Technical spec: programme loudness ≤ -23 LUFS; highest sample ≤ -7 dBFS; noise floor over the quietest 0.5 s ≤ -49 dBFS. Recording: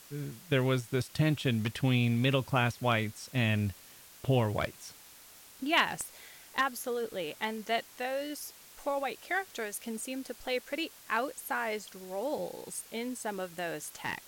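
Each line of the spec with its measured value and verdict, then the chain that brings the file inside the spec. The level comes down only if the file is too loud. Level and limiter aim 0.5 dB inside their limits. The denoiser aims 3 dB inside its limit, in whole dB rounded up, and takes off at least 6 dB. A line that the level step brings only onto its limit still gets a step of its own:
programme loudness -32.5 LUFS: pass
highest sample -10.5 dBFS: pass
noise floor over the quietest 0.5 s -54 dBFS: pass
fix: none needed

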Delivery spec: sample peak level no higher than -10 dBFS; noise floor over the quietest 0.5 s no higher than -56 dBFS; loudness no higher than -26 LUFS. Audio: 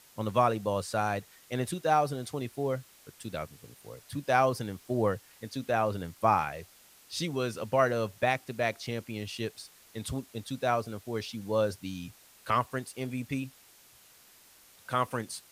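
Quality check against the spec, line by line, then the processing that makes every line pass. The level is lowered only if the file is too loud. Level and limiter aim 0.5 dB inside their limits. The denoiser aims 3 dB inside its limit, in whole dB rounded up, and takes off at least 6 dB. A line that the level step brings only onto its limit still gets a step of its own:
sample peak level -11.0 dBFS: pass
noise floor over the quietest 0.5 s -58 dBFS: pass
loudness -31.5 LUFS: pass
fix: none needed

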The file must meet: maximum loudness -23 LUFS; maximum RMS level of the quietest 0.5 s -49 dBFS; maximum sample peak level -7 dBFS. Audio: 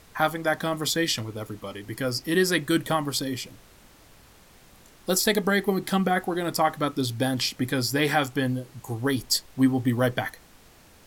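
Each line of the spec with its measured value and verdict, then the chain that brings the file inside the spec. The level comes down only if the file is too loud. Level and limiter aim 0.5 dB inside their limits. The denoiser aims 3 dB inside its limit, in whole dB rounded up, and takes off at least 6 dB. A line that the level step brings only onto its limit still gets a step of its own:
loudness -25.5 LUFS: pass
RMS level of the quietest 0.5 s -53 dBFS: pass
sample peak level -8.5 dBFS: pass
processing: none needed

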